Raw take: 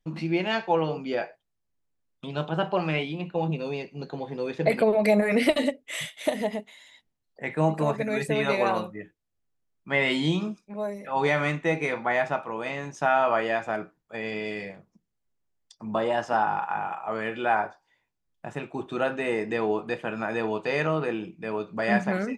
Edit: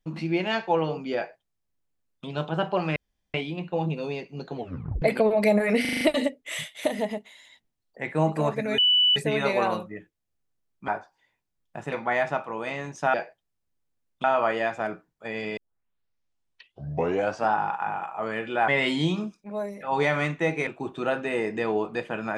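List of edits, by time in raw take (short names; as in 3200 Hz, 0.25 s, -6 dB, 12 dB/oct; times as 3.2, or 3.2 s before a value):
1.16–2.26 copy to 13.13
2.96 insert room tone 0.38 s
4.18 tape stop 0.46 s
5.43 stutter 0.04 s, 6 plays
8.2 add tone 2970 Hz -16.5 dBFS 0.38 s
9.92–11.91 swap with 17.57–18.61
14.46 tape start 1.95 s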